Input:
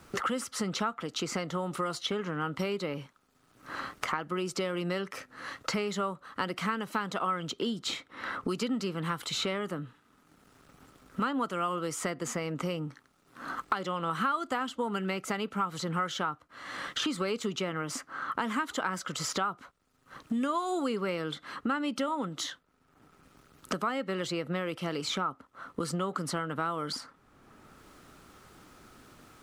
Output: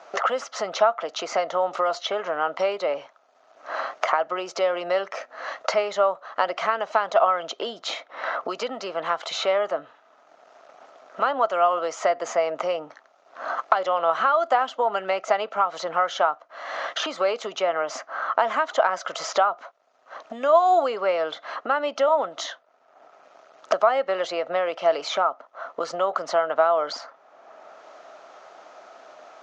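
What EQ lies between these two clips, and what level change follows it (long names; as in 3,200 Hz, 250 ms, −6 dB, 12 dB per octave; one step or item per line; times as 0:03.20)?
high-pass with resonance 650 Hz, resonance Q 7.1
low-pass with resonance 6,600 Hz, resonance Q 4.5
high-frequency loss of the air 230 metres
+6.5 dB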